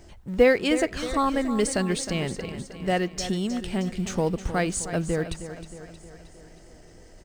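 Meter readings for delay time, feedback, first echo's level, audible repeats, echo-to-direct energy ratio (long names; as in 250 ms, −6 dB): 313 ms, 56%, −12.0 dB, 5, −10.5 dB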